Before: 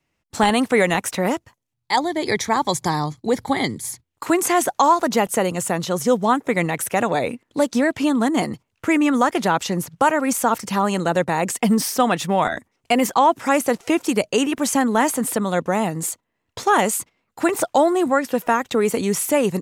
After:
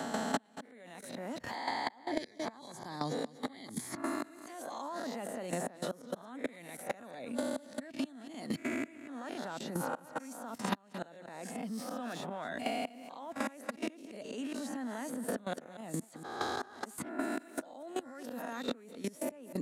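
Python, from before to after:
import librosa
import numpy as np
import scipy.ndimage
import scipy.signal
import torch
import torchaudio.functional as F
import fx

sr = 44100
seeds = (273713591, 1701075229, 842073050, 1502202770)

y = fx.spec_swells(x, sr, rise_s=0.61)
y = fx.low_shelf(y, sr, hz=230.0, db=5.0)
y = fx.gate_flip(y, sr, shuts_db=-9.0, range_db=-32)
y = fx.highpass(y, sr, hz=140.0, slope=6)
y = y + 10.0 ** (-18.0 / 20.0) * np.pad(y, (int(235 * sr / 1000.0), 0))[:len(y)]
y = fx.level_steps(y, sr, step_db=19)
y = fx.graphic_eq_15(y, sr, hz=(250, 630, 1600, 4000, 10000), db=(11, 8, 6, 7, 3))
y = fx.band_squash(y, sr, depth_pct=100)
y = y * 10.0 ** (-3.0 / 20.0)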